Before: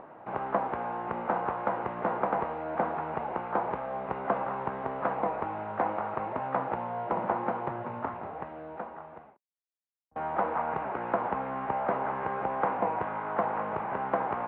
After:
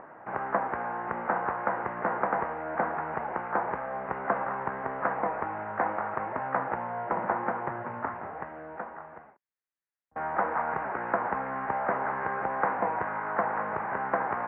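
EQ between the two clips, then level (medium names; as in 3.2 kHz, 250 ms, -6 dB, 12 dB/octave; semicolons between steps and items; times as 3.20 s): resonant low-pass 1.8 kHz, resonance Q 2.7; -1.5 dB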